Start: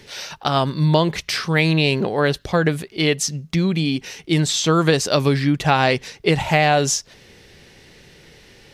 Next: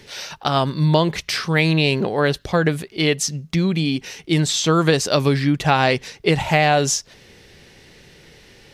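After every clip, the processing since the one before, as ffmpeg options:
-af anull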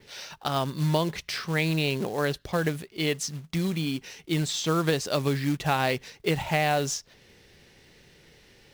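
-af "adynamicequalizer=threshold=0.0112:dfrequency=8700:dqfactor=0.85:tfrequency=8700:tqfactor=0.85:attack=5:release=100:ratio=0.375:range=2:mode=cutabove:tftype=bell,acrusher=bits=4:mode=log:mix=0:aa=0.000001,volume=0.376"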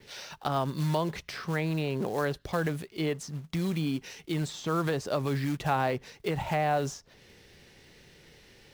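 -filter_complex "[0:a]acrossover=split=700|1500[s0][s1][s2];[s0]alimiter=limit=0.0668:level=0:latency=1[s3];[s2]acompressor=threshold=0.00891:ratio=6[s4];[s3][s1][s4]amix=inputs=3:normalize=0"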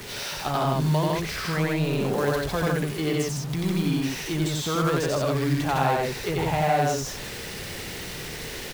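-af "aeval=exprs='val(0)+0.5*0.02*sgn(val(0))':c=same,aecho=1:1:90.38|157.4:0.891|0.794"

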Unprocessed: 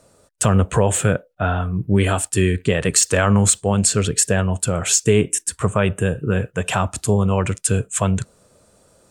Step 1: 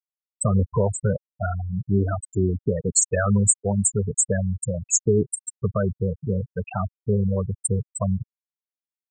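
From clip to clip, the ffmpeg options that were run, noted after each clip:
-af "afftfilt=real='re*gte(hypot(re,im),0.398)':imag='im*gte(hypot(re,im),0.398)':win_size=1024:overlap=0.75,highshelf=f=6000:g=6.5,volume=0.631"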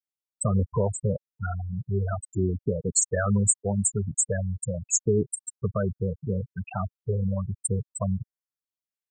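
-af "afftfilt=real='re*(1-between(b*sr/1024,270*pow(3100/270,0.5+0.5*sin(2*PI*0.39*pts/sr))/1.41,270*pow(3100/270,0.5+0.5*sin(2*PI*0.39*pts/sr))*1.41))':imag='im*(1-between(b*sr/1024,270*pow(3100/270,0.5+0.5*sin(2*PI*0.39*pts/sr))/1.41,270*pow(3100/270,0.5+0.5*sin(2*PI*0.39*pts/sr))*1.41))':win_size=1024:overlap=0.75,volume=0.668"

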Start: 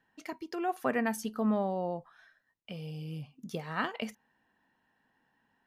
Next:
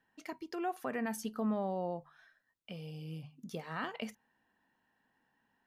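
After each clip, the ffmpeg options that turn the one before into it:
-af "bandreject=f=50:t=h:w=6,bandreject=f=100:t=h:w=6,bandreject=f=150:t=h:w=6,alimiter=limit=0.0668:level=0:latency=1:release=42,volume=0.708"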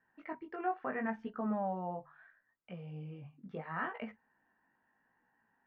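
-af "lowpass=f=1900:w=0.5412,lowpass=f=1900:w=1.3066,tiltshelf=f=1100:g=-4,flanger=delay=16.5:depth=5.3:speed=0.76,volume=1.78"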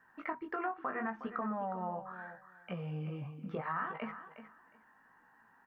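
-af "equalizer=f=1200:t=o:w=0.76:g=10.5,acompressor=threshold=0.00891:ratio=6,aecho=1:1:362|724:0.251|0.0427,volume=2.11"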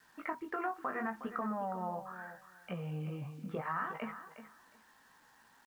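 -af "acrusher=bits=10:mix=0:aa=0.000001"

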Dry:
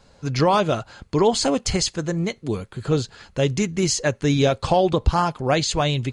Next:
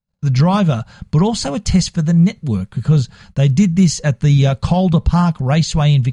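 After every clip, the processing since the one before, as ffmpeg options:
-af "agate=range=0.0112:threshold=0.00398:ratio=16:detection=peak,lowshelf=f=240:t=q:w=3:g=8,alimiter=level_in=1.5:limit=0.891:release=50:level=0:latency=1,volume=0.708"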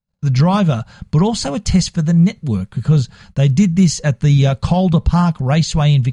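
-af anull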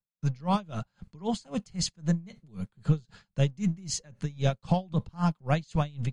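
-filter_complex "[0:a]acrossover=split=130|1500[s0][s1][s2];[s0]aeval=exprs='max(val(0),0)':c=same[s3];[s3][s1][s2]amix=inputs=3:normalize=0,aeval=exprs='val(0)*pow(10,-29*(0.5-0.5*cos(2*PI*3.8*n/s))/20)':c=same,volume=0.422"

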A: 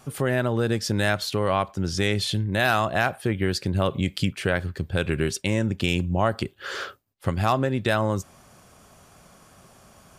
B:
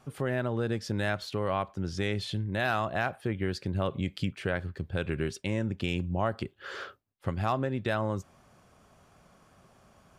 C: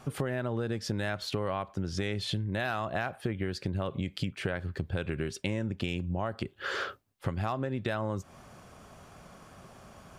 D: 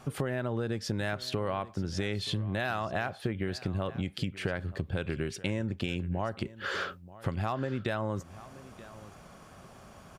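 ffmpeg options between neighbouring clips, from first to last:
-af "highshelf=f=5300:g=-11,volume=0.473"
-af "acompressor=threshold=0.0141:ratio=6,volume=2.51"
-af "aecho=1:1:929:0.126"

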